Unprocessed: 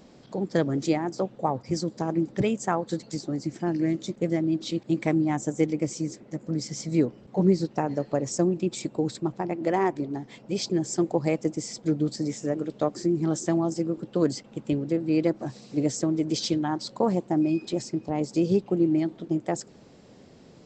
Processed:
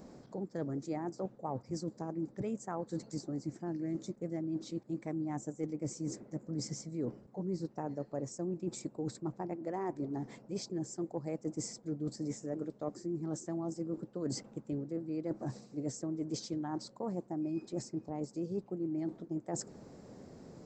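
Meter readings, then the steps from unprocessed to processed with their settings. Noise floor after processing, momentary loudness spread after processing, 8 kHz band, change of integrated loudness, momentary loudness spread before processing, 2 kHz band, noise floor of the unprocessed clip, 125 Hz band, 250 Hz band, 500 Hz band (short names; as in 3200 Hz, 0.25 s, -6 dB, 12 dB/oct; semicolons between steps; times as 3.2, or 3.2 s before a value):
-60 dBFS, 3 LU, -9.5 dB, -12.0 dB, 7 LU, -17.5 dB, -52 dBFS, -11.0 dB, -12.0 dB, -12.5 dB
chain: bell 3100 Hz -13 dB 1.1 oct; reverse; compressor 6:1, threshold -35 dBFS, peak gain reduction 18.5 dB; reverse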